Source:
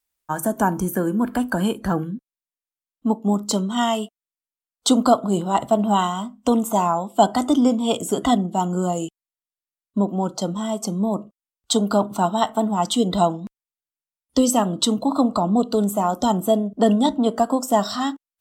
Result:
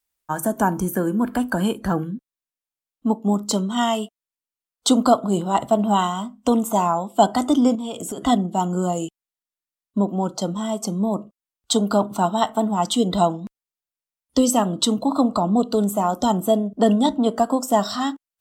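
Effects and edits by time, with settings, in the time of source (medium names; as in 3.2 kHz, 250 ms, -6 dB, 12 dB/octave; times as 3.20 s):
7.75–8.26 s: compression, threshold -26 dBFS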